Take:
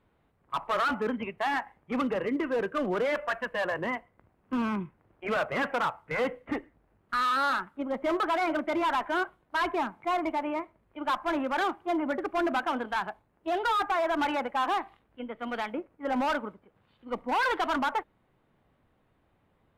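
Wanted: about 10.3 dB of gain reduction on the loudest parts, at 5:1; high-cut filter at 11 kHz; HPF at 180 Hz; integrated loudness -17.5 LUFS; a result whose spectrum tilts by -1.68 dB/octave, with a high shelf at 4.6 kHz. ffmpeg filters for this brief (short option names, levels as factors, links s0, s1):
-af "highpass=180,lowpass=11000,highshelf=f=4600:g=8,acompressor=threshold=0.0158:ratio=5,volume=11.9"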